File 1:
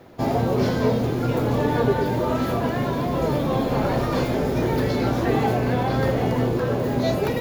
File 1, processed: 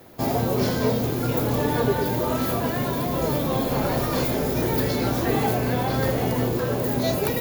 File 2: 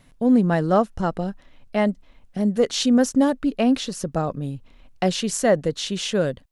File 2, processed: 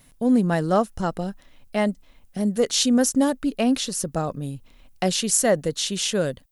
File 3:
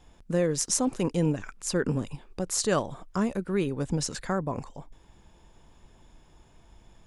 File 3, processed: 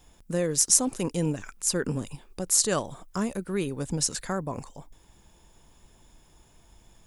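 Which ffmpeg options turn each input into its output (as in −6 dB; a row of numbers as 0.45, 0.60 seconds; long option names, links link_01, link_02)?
-af "aemphasis=mode=production:type=50fm,volume=-1.5dB"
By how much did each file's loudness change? −1.0, −0.5, +2.5 LU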